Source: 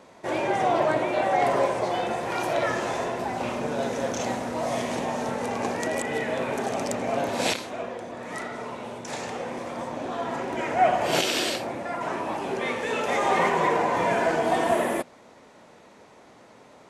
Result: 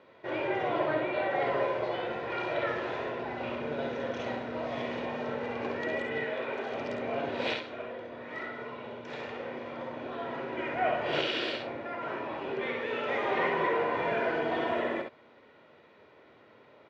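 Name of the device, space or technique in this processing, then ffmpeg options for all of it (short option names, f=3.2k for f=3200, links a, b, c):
guitar cabinet: -filter_complex "[0:a]highpass=96,equalizer=f=180:t=q:w=4:g=-6,equalizer=f=500:t=q:w=4:g=-3,equalizer=f=900:t=q:w=4:g=-7,lowpass=f=3.6k:w=0.5412,lowpass=f=3.6k:w=1.3066,aecho=1:1:2.1:0.35,asettb=1/sr,asplit=3[a][b][c];[a]atrim=end=6.244[d];[b]atrim=start=6.24:end=6.74,asetpts=PTS-STARTPTS,afade=t=in:d=0.004:c=qsin,afade=t=out:st=0.496:d=0.004:c=qsin,bass=f=250:g=-10,treble=f=4k:g=1[e];[c]atrim=start=6.736[f];[d][e]acrossfade=d=0.004:c1=hsin:c2=qsin[g];[g][f]acrossfade=d=0.004:c1=qsin:c2=hsin,aecho=1:1:54|67:0.376|0.447,volume=-5.5dB"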